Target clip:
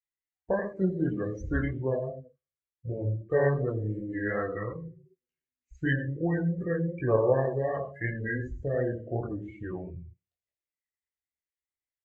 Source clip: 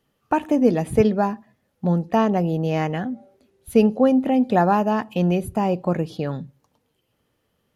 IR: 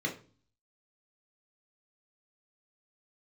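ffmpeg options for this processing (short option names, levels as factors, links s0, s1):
-filter_complex "[0:a]asplit=2[s0][s1];[s1]aecho=0:1:54|77:0.355|0.251[s2];[s0][s2]amix=inputs=2:normalize=0,acrossover=split=8700[s3][s4];[s4]acompressor=threshold=0.00126:ratio=4:attack=1:release=60[s5];[s3][s5]amix=inputs=2:normalize=0,asplit=2[s6][s7];[s7]adelay=145.8,volume=0.0794,highshelf=f=4000:g=-3.28[s8];[s6][s8]amix=inputs=2:normalize=0,asetrate=28400,aresample=44100,asplit=2[s9][s10];[s10]adelay=16,volume=0.473[s11];[s9][s11]amix=inputs=2:normalize=0,asplit=2[s12][s13];[1:a]atrim=start_sample=2205,adelay=132[s14];[s13][s14]afir=irnorm=-1:irlink=0,volume=0.0501[s15];[s12][s15]amix=inputs=2:normalize=0,flanger=delay=22.5:depth=6.5:speed=2.7,afftdn=nr=32:nf=-33,equalizer=f=125:t=o:w=1:g=-9,equalizer=f=250:t=o:w=1:g=-11,equalizer=f=1000:t=o:w=1:g=-8,equalizer=f=2000:t=o:w=1:g=11,equalizer=f=8000:t=o:w=1:g=7"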